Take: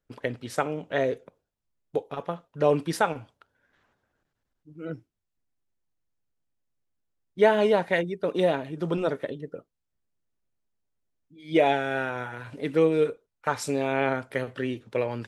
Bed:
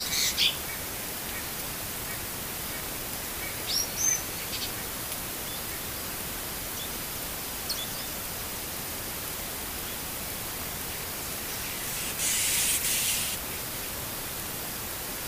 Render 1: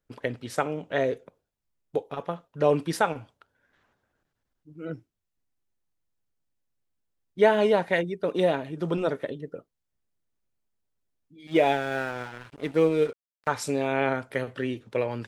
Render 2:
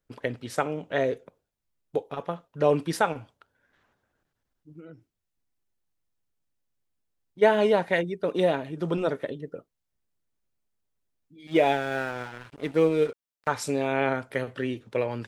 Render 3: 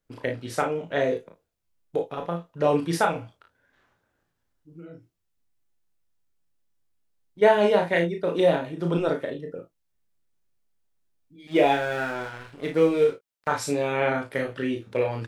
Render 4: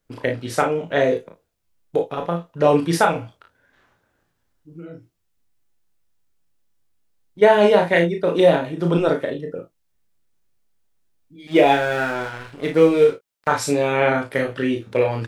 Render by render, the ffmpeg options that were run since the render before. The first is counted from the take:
-filter_complex "[0:a]asettb=1/sr,asplit=3[a][b][c];[a]atrim=end=11.474[d];[b]atrim=start=11.47:end=13.48,asetpts=PTS-STARTPTS,afade=t=in:d=0.004:c=qsin,afade=t=out:st=2.006:d=0.004:c=qsin,aeval=exprs='sgn(val(0))*max(abs(val(0))-0.00708,0)':c=same[e];[c]atrim=start=13.476[f];[d][e]acrossfade=d=0.004:c1=hsin:c2=qsin[g];[g][f]acrossfade=d=0.004:c1=qsin:c2=hsin"
-filter_complex "[0:a]asplit=3[a][b][c];[a]afade=t=out:st=4.79:d=0.02[d];[b]acompressor=threshold=-47dB:ratio=2.5:attack=3.2:release=140:knee=1:detection=peak,afade=t=in:st=4.79:d=0.02,afade=t=out:st=7.41:d=0.02[e];[c]afade=t=in:st=7.41:d=0.02[f];[d][e][f]amix=inputs=3:normalize=0"
-filter_complex "[0:a]asplit=2[a][b];[b]adelay=24,volume=-9dB[c];[a][c]amix=inputs=2:normalize=0,asplit=2[d][e];[e]aecho=0:1:35|53:0.562|0.282[f];[d][f]amix=inputs=2:normalize=0"
-af "volume=6dB,alimiter=limit=-3dB:level=0:latency=1"

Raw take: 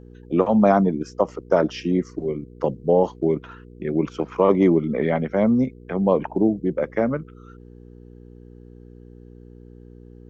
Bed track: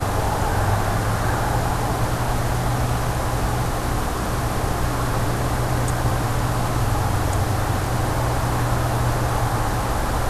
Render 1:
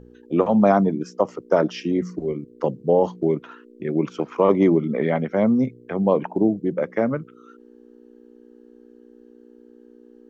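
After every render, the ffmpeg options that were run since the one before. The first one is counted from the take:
-af "bandreject=f=60:t=h:w=4,bandreject=f=120:t=h:w=4,bandreject=f=180:t=h:w=4"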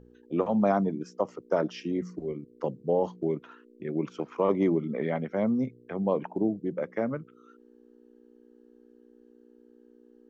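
-af "volume=-8dB"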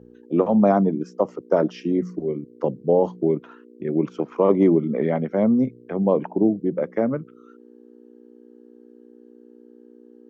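-af "highpass=60,equalizer=f=300:w=0.3:g=8.5"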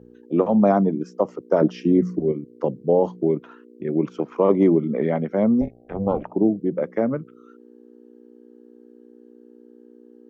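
-filter_complex "[0:a]asettb=1/sr,asplit=3[a][b][c];[a]atrim=end=1.614[d];[b]atrim=start=1.61:end=2.32,asetpts=PTS-STARTPTS,afade=t=in:d=0.004:c=qsin,afade=t=out:st=0.706:d=0.004:c=qsin,lowshelf=f=420:g=7[e];[c]atrim=start=2.316[f];[d][e]acrossfade=d=0.004:c1=hsin:c2=qsin[g];[g][f]acrossfade=d=0.004:c1=qsin:c2=hsin,asettb=1/sr,asplit=3[h][i][j];[h]atrim=end=5.614[k];[i]atrim=start=5.61:end=6.33,asetpts=PTS-STARTPTS,afade=t=in:d=0.004:c=qsin,afade=t=out:st=0.716:d=0.004:c=qsin,tremolo=f=300:d=0.857[l];[j]atrim=start=6.326[m];[k][l]acrossfade=d=0.004:c1=hsin:c2=qsin[n];[n][m]acrossfade=d=0.004:c1=qsin:c2=hsin"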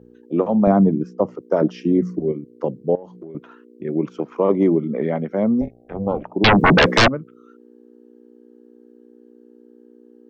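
-filter_complex "[0:a]asettb=1/sr,asplit=3[a][b][c];[a]atrim=end=0.674[d];[b]atrim=start=0.67:end=1.35,asetpts=PTS-STARTPTS,afade=t=in:d=0.004:c=qsin,afade=t=out:st=0.676:d=0.004:c=qsin,aemphasis=mode=reproduction:type=bsi[e];[c]atrim=start=1.346[f];[d][e]acrossfade=d=0.004:c1=hsin:c2=qsin[g];[g][f]acrossfade=d=0.004:c1=qsin:c2=hsin,asettb=1/sr,asplit=3[h][i][j];[h]atrim=end=2.954[k];[i]atrim=start=2.95:end=3.35,asetpts=PTS-STARTPTS,afade=t=in:d=0.004:c=qsin,afade=t=out:st=0.396:d=0.004:c=qsin,acompressor=threshold=-34dB:ratio=6:attack=3.2:release=140:knee=1:detection=peak[l];[j]atrim=start=3.346[m];[k][l]acrossfade=d=0.004:c1=hsin:c2=qsin[n];[n][m]acrossfade=d=0.004:c1=qsin:c2=hsin,asettb=1/sr,asplit=3[o][p][q];[o]atrim=end=6.444[r];[p]atrim=start=6.44:end=7.08,asetpts=PTS-STARTPTS,afade=t=in:d=0.004:c=qsin,afade=t=out:st=0.636:d=0.004:c=qsin,aeval=exprs='0.376*sin(PI/2*8.91*val(0)/0.376)':c=same[s];[q]atrim=start=7.076[t];[r][s]acrossfade=d=0.004:c1=hsin:c2=qsin[u];[u][t]acrossfade=d=0.004:c1=qsin:c2=hsin"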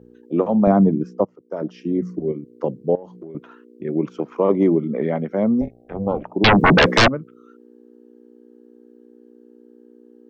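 -filter_complex "[0:a]asplit=2[a][b];[a]atrim=end=1.25,asetpts=PTS-STARTPTS,afade=t=out:st=1.246:d=0.004:c=hsin:silence=0.1[c];[b]atrim=start=1.25,asetpts=PTS-STARTPTS,afade=t=in:d=1.28:silence=0.1[d];[c][d]concat=n=2:v=0:a=1"

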